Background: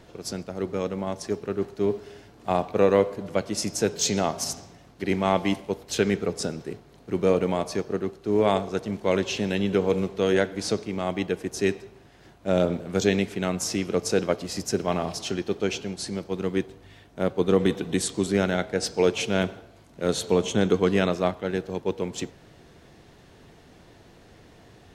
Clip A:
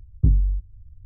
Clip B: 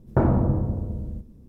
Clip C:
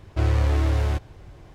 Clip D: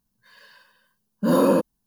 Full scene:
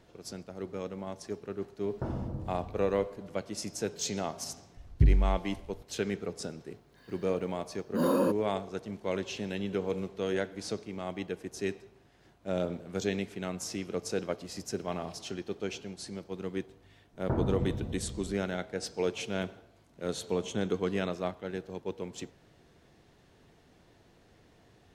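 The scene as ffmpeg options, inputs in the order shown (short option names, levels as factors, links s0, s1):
-filter_complex "[2:a]asplit=2[s0][s1];[0:a]volume=0.335[s2];[s0]atrim=end=1.48,asetpts=PTS-STARTPTS,volume=0.168,afade=t=in:d=0.004:c=hsin,afade=t=out:st=1.476:d=0.004:c=hsin,adelay=1850[s3];[1:a]atrim=end=1.05,asetpts=PTS-STARTPTS,volume=0.596,afade=t=in:d=0.004:c=hsin,afade=t=out:st=1.046:d=0.004:c=hsin,adelay=210357S[s4];[4:a]atrim=end=1.86,asetpts=PTS-STARTPTS,volume=0.376,afade=t=in:d=0.004:c=hsin,afade=t=out:st=1.856:d=0.004:c=hsin,adelay=6710[s5];[s1]atrim=end=1.48,asetpts=PTS-STARTPTS,volume=0.282,afade=t=in:d=0.004:c=hsin,afade=t=out:st=1.476:d=0.004:c=hsin,adelay=17130[s6];[s2][s3][s4][s5][s6]amix=inputs=5:normalize=0"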